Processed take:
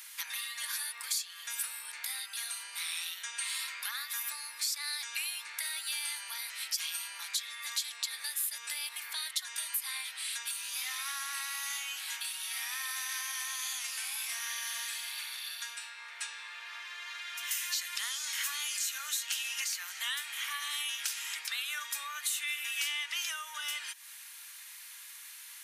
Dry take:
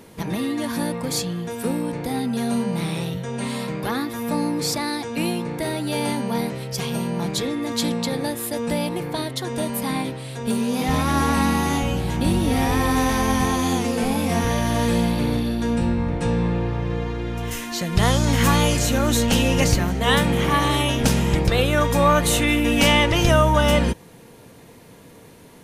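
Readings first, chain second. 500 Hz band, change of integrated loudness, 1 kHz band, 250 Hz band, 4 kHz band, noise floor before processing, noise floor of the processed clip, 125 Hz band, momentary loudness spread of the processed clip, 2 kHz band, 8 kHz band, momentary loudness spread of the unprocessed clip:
below −40 dB, −13.5 dB, −22.5 dB, below −40 dB, −7.5 dB, −46 dBFS, −49 dBFS, below −40 dB, 8 LU, −10.0 dB, −4.5 dB, 10 LU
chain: spectral tilt +2.5 dB per octave
downward compressor 12 to 1, threshold −30 dBFS, peak gain reduction 19 dB
high-pass filter 1,400 Hz 24 dB per octave

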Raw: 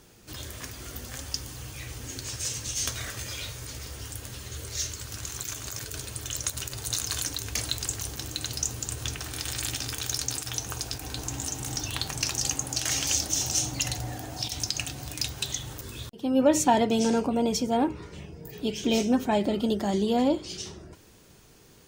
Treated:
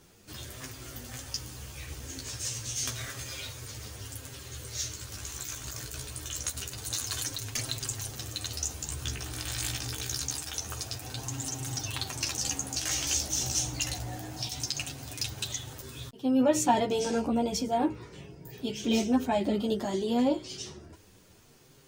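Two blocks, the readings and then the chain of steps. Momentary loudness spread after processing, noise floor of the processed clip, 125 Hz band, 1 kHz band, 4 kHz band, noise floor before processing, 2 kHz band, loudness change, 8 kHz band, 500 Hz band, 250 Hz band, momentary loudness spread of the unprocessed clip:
14 LU, −56 dBFS, −2.0 dB, −2.5 dB, −3.0 dB, −54 dBFS, −3.0 dB, −3.0 dB, −3.0 dB, −3.0 dB, −2.5 dB, 14 LU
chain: surface crackle 35 per second −50 dBFS
multi-voice chorus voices 2, 0.26 Hz, delay 12 ms, depth 4.6 ms

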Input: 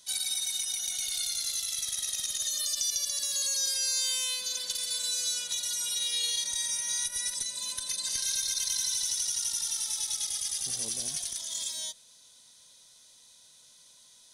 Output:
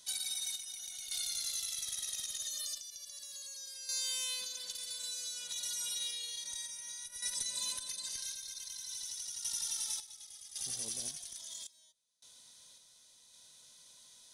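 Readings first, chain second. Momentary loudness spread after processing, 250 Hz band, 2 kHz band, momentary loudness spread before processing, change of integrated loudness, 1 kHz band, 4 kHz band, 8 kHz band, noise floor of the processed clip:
21 LU, can't be measured, −8.5 dB, 5 LU, −9.0 dB, −7.5 dB, −8.5 dB, −9.0 dB, −63 dBFS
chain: downward compressor, threshold −33 dBFS, peak gain reduction 8 dB
sample-and-hold tremolo 1.8 Hz, depth 95%

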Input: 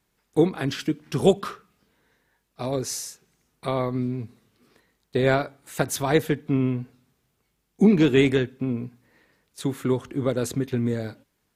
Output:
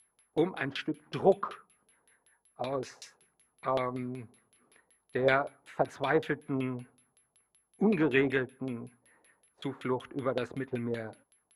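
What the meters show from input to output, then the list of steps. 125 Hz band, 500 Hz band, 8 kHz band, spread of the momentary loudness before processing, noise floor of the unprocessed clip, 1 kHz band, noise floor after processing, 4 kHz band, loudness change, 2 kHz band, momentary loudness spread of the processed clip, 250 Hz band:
−12.5 dB, −6.5 dB, below −20 dB, 15 LU, −74 dBFS, −2.5 dB, −78 dBFS, −9.5 dB, −7.5 dB, −2.5 dB, 15 LU, −10.0 dB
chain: tilt shelving filter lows +8 dB, about 1,400 Hz
steady tone 11,000 Hz −47 dBFS
first-order pre-emphasis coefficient 0.97
auto-filter low-pass saw down 5.3 Hz 580–3,500 Hz
level +8.5 dB

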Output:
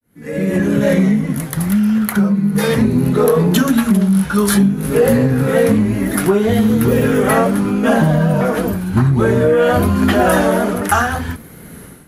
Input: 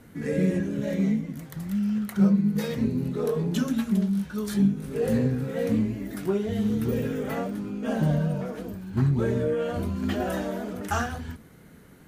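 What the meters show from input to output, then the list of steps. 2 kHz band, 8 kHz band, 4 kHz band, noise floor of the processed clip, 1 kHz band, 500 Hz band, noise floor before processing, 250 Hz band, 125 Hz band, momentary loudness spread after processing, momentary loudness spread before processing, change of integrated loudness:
+17.0 dB, +18.5 dB, +14.5 dB, −36 dBFS, +17.0 dB, +14.0 dB, −50 dBFS, +11.5 dB, +11.0 dB, 5 LU, 8 LU, +12.5 dB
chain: fade in at the beginning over 0.51 s
parametric band 11,000 Hz +14.5 dB 0.26 octaves
downward compressor 6 to 1, threshold −26 dBFS, peak gain reduction 10.5 dB
dynamic equaliser 1,200 Hz, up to +7 dB, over −49 dBFS, Q 0.72
pitch vibrato 0.64 Hz 47 cents
automatic gain control gain up to 14 dB
soft clipping −2.5 dBFS, distortion −30 dB
level +3 dB

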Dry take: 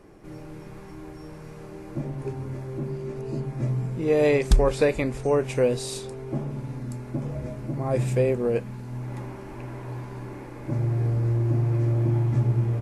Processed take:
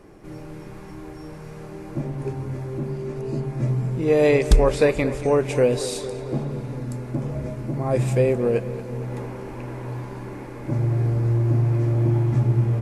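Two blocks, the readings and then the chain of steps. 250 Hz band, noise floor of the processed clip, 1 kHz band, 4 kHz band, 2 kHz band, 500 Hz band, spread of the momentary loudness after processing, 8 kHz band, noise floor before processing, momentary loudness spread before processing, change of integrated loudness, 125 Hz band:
+3.5 dB, −38 dBFS, +3.5 dB, +3.0 dB, +3.0 dB, +3.5 dB, 19 LU, +3.0 dB, −41 dBFS, 19 LU, +3.0 dB, +3.0 dB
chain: tape delay 229 ms, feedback 76%, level −13.5 dB, low-pass 3,800 Hz
level +3 dB

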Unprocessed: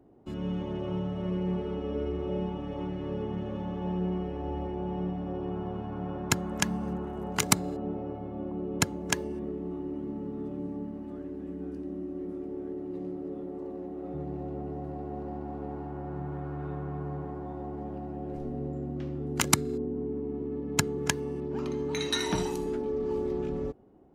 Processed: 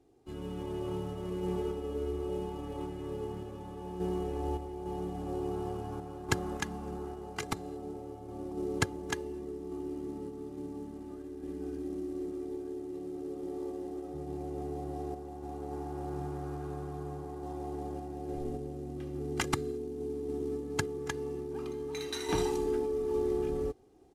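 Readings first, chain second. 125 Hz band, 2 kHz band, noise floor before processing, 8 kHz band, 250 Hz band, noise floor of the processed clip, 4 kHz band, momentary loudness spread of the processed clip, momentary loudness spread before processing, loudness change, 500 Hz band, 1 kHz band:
−5.5 dB, −5.0 dB, −39 dBFS, −11.5 dB, −4.5 dB, −44 dBFS, −8.0 dB, 9 LU, 10 LU, −4.0 dB, −1.0 dB, −2.5 dB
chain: variable-slope delta modulation 64 kbit/s
comb filter 2.5 ms, depth 54%
sample-and-hold tremolo
level −1.5 dB

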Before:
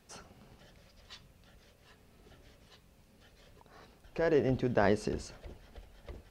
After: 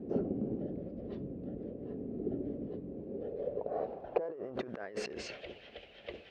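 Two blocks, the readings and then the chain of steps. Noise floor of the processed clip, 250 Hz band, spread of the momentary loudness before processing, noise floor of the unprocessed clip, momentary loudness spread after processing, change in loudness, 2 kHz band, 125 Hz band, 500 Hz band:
−55 dBFS, 0.0 dB, 15 LU, −64 dBFS, 11 LU, −8.5 dB, −8.0 dB, −4.5 dB, −3.0 dB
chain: notch filter 900 Hz, Q 16
low-pass that shuts in the quiet parts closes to 3,000 Hz, open at −26 dBFS
low shelf with overshoot 760 Hz +12 dB, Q 1.5
compressor whose output falls as the input rises −29 dBFS, ratio −1
band-pass filter sweep 290 Hz → 2,800 Hz, 0:02.83–0:05.45
level +8 dB

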